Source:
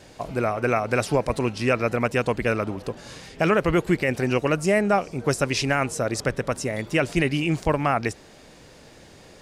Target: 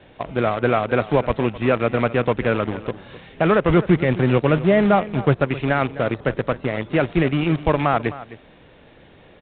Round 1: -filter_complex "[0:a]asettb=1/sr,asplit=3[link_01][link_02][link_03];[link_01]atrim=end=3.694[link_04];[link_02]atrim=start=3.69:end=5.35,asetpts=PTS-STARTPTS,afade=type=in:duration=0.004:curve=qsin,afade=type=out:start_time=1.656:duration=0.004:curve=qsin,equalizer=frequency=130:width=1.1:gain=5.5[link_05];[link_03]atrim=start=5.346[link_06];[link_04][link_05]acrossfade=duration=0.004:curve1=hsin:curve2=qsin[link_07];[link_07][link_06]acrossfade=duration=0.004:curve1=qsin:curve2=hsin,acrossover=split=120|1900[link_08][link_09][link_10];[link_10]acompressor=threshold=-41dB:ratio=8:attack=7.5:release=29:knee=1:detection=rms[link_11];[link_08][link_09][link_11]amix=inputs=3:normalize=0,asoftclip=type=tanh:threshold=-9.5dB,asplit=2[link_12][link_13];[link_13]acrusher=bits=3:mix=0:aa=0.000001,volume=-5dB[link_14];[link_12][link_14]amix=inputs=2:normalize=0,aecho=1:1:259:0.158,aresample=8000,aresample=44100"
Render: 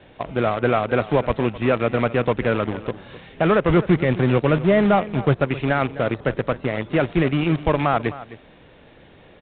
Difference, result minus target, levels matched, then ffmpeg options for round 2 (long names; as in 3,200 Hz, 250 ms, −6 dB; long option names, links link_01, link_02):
soft clipping: distortion +15 dB
-filter_complex "[0:a]asettb=1/sr,asplit=3[link_01][link_02][link_03];[link_01]atrim=end=3.694[link_04];[link_02]atrim=start=3.69:end=5.35,asetpts=PTS-STARTPTS,afade=type=in:duration=0.004:curve=qsin,afade=type=out:start_time=1.656:duration=0.004:curve=qsin,equalizer=frequency=130:width=1.1:gain=5.5[link_05];[link_03]atrim=start=5.346[link_06];[link_04][link_05]acrossfade=duration=0.004:curve1=hsin:curve2=qsin[link_07];[link_07][link_06]acrossfade=duration=0.004:curve1=qsin:curve2=hsin,acrossover=split=120|1900[link_08][link_09][link_10];[link_10]acompressor=threshold=-41dB:ratio=8:attack=7.5:release=29:knee=1:detection=rms[link_11];[link_08][link_09][link_11]amix=inputs=3:normalize=0,asoftclip=type=tanh:threshold=-1dB,asplit=2[link_12][link_13];[link_13]acrusher=bits=3:mix=0:aa=0.000001,volume=-5dB[link_14];[link_12][link_14]amix=inputs=2:normalize=0,aecho=1:1:259:0.158,aresample=8000,aresample=44100"